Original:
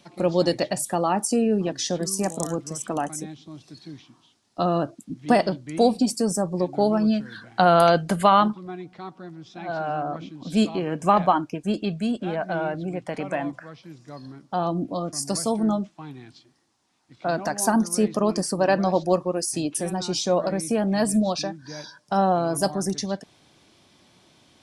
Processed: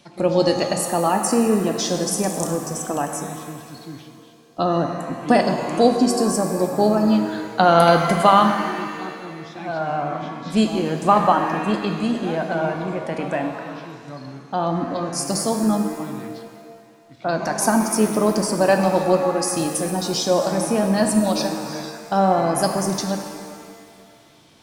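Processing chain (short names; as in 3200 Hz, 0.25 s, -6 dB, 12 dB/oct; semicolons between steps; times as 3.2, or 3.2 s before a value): shimmer reverb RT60 2 s, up +7 st, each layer -8 dB, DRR 5 dB; gain +2.5 dB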